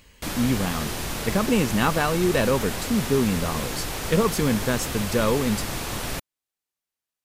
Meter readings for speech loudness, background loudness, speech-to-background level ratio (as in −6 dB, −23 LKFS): −24.5 LKFS, −29.5 LKFS, 5.0 dB